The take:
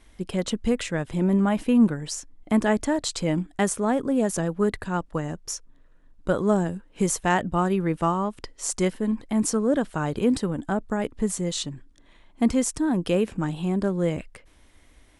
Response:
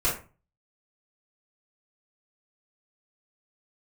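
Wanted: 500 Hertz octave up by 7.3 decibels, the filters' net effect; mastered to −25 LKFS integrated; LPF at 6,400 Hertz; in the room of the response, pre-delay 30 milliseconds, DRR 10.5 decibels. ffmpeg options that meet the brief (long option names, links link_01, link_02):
-filter_complex "[0:a]lowpass=6400,equalizer=frequency=500:width_type=o:gain=9,asplit=2[link_01][link_02];[1:a]atrim=start_sample=2205,adelay=30[link_03];[link_02][link_03]afir=irnorm=-1:irlink=0,volume=-21.5dB[link_04];[link_01][link_04]amix=inputs=2:normalize=0,volume=-4dB"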